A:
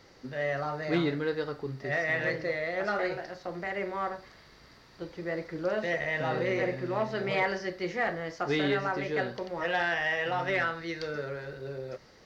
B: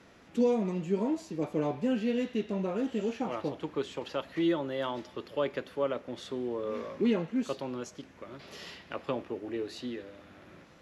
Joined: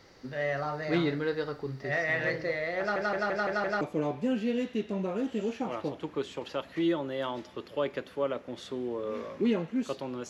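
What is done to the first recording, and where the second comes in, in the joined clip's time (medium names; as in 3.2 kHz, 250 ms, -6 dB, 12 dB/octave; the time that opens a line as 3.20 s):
A
2.79 s: stutter in place 0.17 s, 6 plays
3.81 s: go over to B from 1.41 s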